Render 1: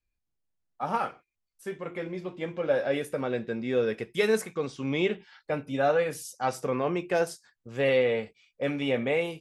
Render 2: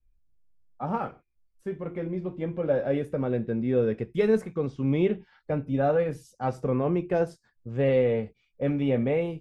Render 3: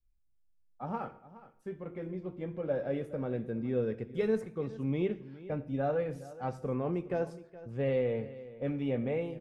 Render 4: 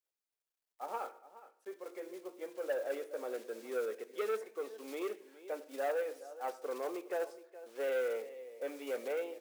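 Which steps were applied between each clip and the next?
tilt EQ -4 dB/octave; trim -3 dB
delay 419 ms -17 dB; on a send at -18 dB: reverberation RT60 0.70 s, pre-delay 66 ms; on the sum: trim -7.5 dB
block-companded coder 5-bit; inverse Chebyshev high-pass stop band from 150 Hz, stop band 50 dB; transformer saturation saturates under 920 Hz; trim -1 dB

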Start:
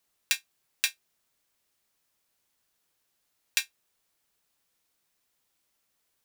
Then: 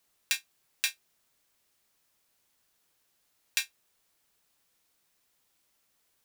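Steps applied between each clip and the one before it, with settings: peak limiter -9 dBFS, peak gain reduction 6.5 dB; trim +3 dB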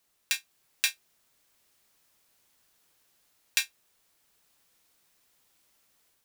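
level rider gain up to 4.5 dB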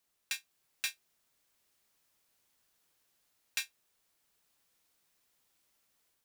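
saturation -17 dBFS, distortion -11 dB; trim -6.5 dB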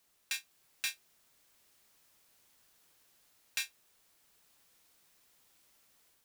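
peak limiter -32 dBFS, peak gain reduction 8.5 dB; trim +7 dB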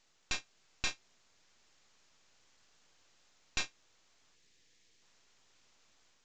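half-wave rectifier; time-frequency box 4.35–5.02 s, 530–1600 Hz -11 dB; trim +5.5 dB; µ-law 128 kbps 16 kHz

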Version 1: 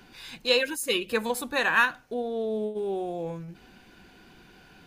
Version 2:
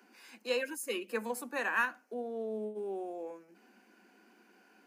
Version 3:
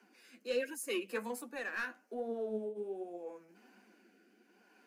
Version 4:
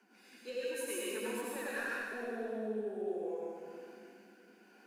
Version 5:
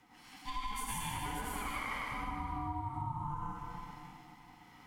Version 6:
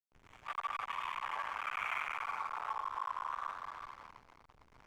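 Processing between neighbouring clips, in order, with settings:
steep high-pass 200 Hz 96 dB/octave; peaking EQ 3.6 kHz -14 dB 0.44 oct; trim -8 dB
saturation -23.5 dBFS, distortion -19 dB; rotary cabinet horn 0.75 Hz; flange 1.3 Hz, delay 4.2 ms, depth 7.9 ms, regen +36%; trim +4 dB
compression, threshold -39 dBFS, peak gain reduction 10 dB; plate-style reverb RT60 2.2 s, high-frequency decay 0.9×, pre-delay 75 ms, DRR -6.5 dB; trim -2.5 dB
compression, threshold -39 dBFS, peak gain reduction 7.5 dB; ring modulator 520 Hz; trim +7 dB
cycle switcher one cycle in 2, muted; mistuned SSB +140 Hz 590–2800 Hz; hysteresis with a dead band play -51.5 dBFS; trim +5 dB

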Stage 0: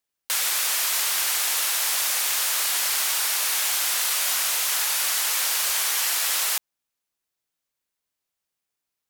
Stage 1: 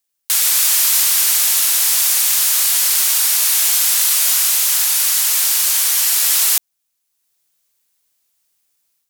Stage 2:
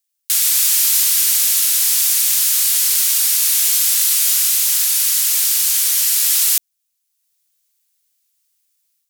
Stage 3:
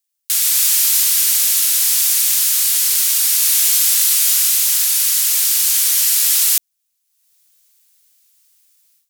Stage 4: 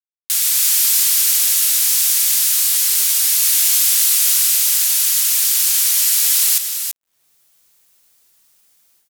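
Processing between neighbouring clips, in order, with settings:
treble shelf 3.7 kHz +12 dB; level rider gain up to 8 dB; trim -1 dB
amplifier tone stack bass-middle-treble 10-0-10
level rider gain up to 11 dB; trim -1 dB
word length cut 10-bit, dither none; delay 334 ms -7.5 dB; trim -1 dB

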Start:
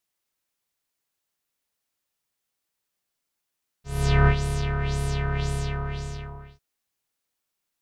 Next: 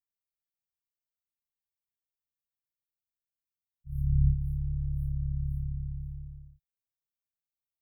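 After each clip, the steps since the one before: spectral noise reduction 7 dB; inverse Chebyshev band-stop 370–8100 Hz, stop band 50 dB; trim -3.5 dB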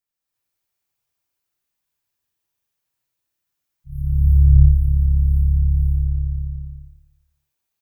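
feedback delay 84 ms, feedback 52%, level -5.5 dB; gated-style reverb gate 390 ms rising, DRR -7.5 dB; trim +5 dB

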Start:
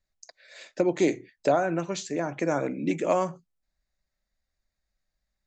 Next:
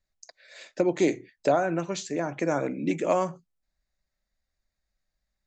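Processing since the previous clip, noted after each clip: no audible change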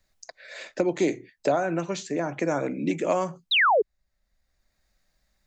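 painted sound fall, 3.51–3.82 s, 380–4100 Hz -18 dBFS; three bands compressed up and down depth 40%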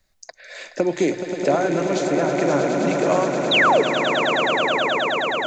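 echo with a slow build-up 106 ms, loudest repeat 8, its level -9.5 dB; trim +3.5 dB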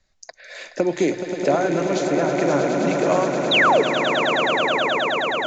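resampled via 16 kHz

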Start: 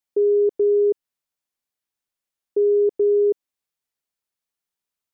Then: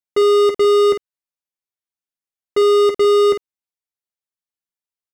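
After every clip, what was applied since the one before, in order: waveshaping leveller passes 5; on a send: early reflections 10 ms -7 dB, 52 ms -8 dB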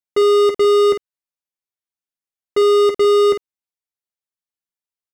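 no audible change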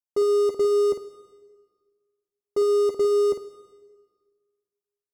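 high-order bell 2.3 kHz -15 dB; reverberation RT60 1.5 s, pre-delay 53 ms, DRR 15 dB; trim -7 dB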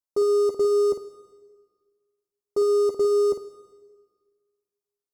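high-order bell 2.4 kHz -11.5 dB 1.3 oct

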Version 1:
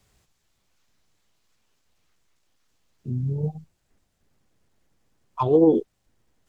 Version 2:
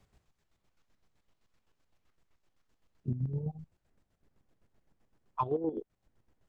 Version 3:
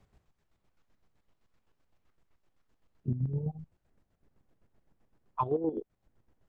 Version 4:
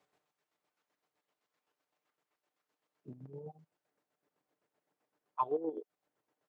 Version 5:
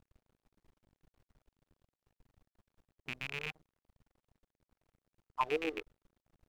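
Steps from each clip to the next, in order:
treble shelf 3 kHz -11.5 dB; compression 16:1, threshold -27 dBFS, peak gain reduction 15.5 dB; square tremolo 7.8 Hz, depth 60%, duty 40%
treble shelf 2.6 kHz -7 dB; trim +2 dB
high-pass 410 Hz 12 dB/octave; comb 6.7 ms, depth 39%; trim -3.5 dB
rattle on loud lows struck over -50 dBFS, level -26 dBFS; added noise brown -60 dBFS; crossover distortion -57 dBFS

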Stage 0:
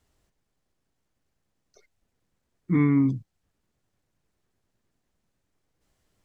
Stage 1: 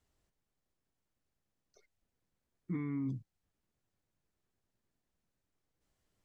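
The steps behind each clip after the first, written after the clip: peak limiter -21 dBFS, peak gain reduction 10 dB; trim -8.5 dB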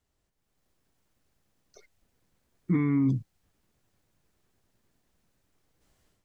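level rider gain up to 12 dB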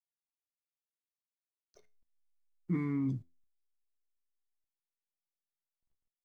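hysteresis with a dead band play -54 dBFS; feedback comb 85 Hz, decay 0.31 s, harmonics all, mix 50%; trim -3.5 dB

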